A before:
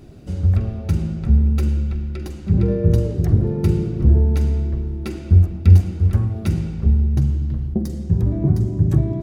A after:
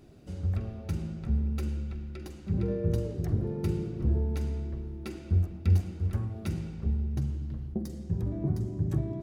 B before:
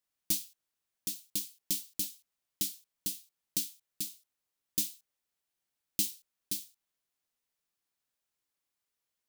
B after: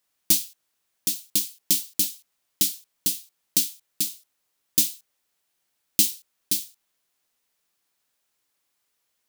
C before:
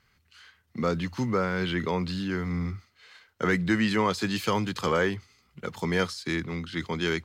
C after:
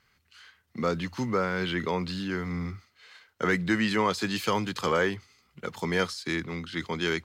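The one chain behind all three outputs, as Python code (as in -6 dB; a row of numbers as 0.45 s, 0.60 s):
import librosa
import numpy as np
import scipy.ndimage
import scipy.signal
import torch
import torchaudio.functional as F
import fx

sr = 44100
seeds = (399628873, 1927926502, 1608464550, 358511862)

y = fx.low_shelf(x, sr, hz=190.0, db=-5.5)
y = y * 10.0 ** (-30 / 20.0) / np.sqrt(np.mean(np.square(y)))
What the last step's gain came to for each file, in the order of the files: -9.0 dB, +11.0 dB, +0.5 dB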